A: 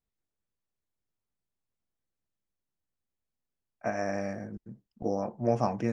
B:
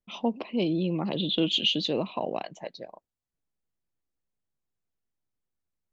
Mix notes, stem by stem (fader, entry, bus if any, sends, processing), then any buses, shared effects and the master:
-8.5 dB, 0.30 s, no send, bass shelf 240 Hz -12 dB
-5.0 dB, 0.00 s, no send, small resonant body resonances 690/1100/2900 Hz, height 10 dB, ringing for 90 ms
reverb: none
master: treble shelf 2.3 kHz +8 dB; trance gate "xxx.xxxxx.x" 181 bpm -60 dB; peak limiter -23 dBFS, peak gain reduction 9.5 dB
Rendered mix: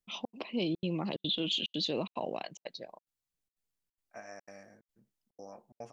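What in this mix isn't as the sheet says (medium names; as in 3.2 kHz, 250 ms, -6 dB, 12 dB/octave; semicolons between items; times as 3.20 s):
stem A -8.5 dB -> -15.0 dB; stem B: missing small resonant body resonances 690/1100/2900 Hz, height 10 dB, ringing for 90 ms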